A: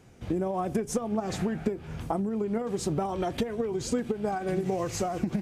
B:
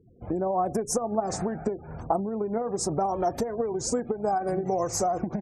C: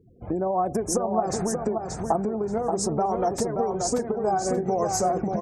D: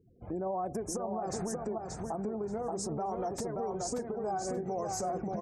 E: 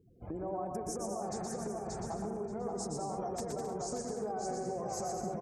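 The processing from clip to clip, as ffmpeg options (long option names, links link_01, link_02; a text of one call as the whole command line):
ffmpeg -i in.wav -af "afftfilt=real='re*gte(hypot(re,im),0.00501)':imag='im*gte(hypot(re,im),0.00501)':win_size=1024:overlap=0.75,firequalizer=gain_entry='entry(230,0);entry(700,9);entry(3100,-15);entry(5300,9)':delay=0.05:min_phase=1,volume=-2dB" out.wav
ffmpeg -i in.wav -af "aecho=1:1:580|1160|1740:0.562|0.118|0.0248,volume=1.5dB" out.wav
ffmpeg -i in.wav -af "alimiter=limit=-18.5dB:level=0:latency=1:release=33,volume=-8dB" out.wav
ffmpeg -i in.wav -af "acompressor=threshold=-37dB:ratio=4,aecho=1:1:120|204|262.8|304|332.8:0.631|0.398|0.251|0.158|0.1" out.wav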